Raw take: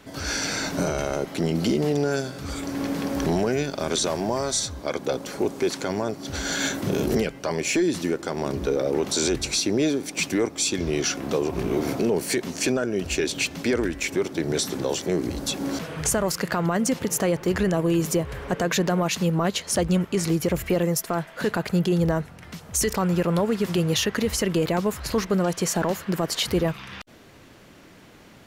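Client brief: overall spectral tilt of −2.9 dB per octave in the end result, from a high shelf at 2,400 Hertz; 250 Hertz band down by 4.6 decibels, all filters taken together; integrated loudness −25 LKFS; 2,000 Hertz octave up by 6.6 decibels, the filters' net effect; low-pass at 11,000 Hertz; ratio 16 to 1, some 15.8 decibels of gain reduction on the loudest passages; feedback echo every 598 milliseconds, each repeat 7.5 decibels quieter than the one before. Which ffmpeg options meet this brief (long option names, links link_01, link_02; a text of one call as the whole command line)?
ffmpeg -i in.wav -af "lowpass=11000,equalizer=frequency=250:width_type=o:gain=-7.5,equalizer=frequency=2000:width_type=o:gain=5.5,highshelf=frequency=2400:gain=6,acompressor=threshold=-31dB:ratio=16,aecho=1:1:598|1196|1794|2392|2990:0.422|0.177|0.0744|0.0312|0.0131,volume=9dB" out.wav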